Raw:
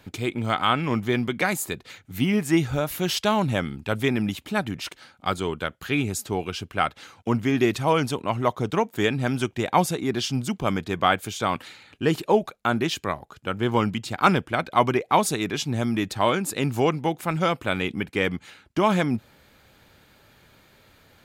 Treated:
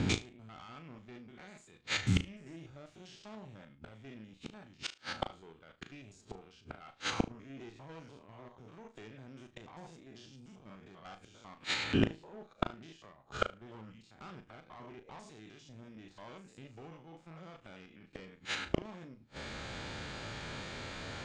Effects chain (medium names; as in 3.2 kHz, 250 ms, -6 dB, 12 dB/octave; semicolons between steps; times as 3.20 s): spectrogram pixelated in time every 100 ms; valve stage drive 22 dB, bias 0.55; inverted gate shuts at -31 dBFS, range -38 dB; steep low-pass 7.7 kHz; flutter echo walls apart 6.3 m, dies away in 0.23 s; trim +16 dB